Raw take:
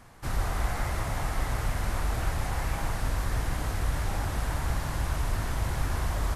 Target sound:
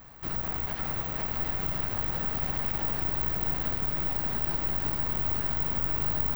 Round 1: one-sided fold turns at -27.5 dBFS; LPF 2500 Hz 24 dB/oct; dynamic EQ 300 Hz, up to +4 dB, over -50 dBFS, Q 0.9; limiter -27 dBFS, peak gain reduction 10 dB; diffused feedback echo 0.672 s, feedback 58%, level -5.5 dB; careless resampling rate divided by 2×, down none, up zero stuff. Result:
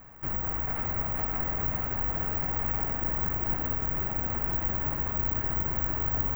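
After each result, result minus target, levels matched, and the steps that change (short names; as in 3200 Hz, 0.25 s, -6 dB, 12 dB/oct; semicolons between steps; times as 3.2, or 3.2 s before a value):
4000 Hz band -10.5 dB; one-sided fold: distortion -10 dB
change: LPF 5600 Hz 24 dB/oct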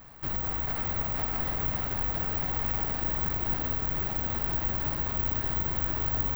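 one-sided fold: distortion -10 dB
change: one-sided fold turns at -34.5 dBFS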